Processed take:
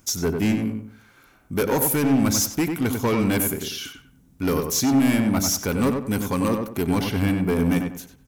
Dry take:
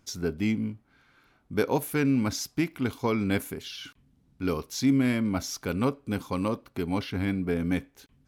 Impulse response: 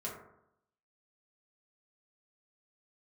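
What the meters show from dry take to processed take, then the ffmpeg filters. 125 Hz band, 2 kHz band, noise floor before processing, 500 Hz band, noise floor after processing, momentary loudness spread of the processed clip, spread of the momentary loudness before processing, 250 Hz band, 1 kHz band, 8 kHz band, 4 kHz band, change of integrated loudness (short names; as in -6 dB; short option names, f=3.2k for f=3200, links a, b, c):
+6.0 dB, +4.5 dB, -66 dBFS, +5.5 dB, -56 dBFS, 10 LU, 9 LU, +6.0 dB, +6.5 dB, +13.5 dB, +7.5 dB, +6.5 dB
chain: -filter_complex "[0:a]aexciter=amount=2.8:drive=6.2:freq=6k,asoftclip=type=hard:threshold=-24dB,asplit=2[a][b];[b]adelay=95,lowpass=f=2.1k:p=1,volume=-4.5dB,asplit=2[c][d];[d]adelay=95,lowpass=f=2.1k:p=1,volume=0.32,asplit=2[e][f];[f]adelay=95,lowpass=f=2.1k:p=1,volume=0.32,asplit=2[g][h];[h]adelay=95,lowpass=f=2.1k:p=1,volume=0.32[i];[a][c][e][g][i]amix=inputs=5:normalize=0,volume=6.5dB"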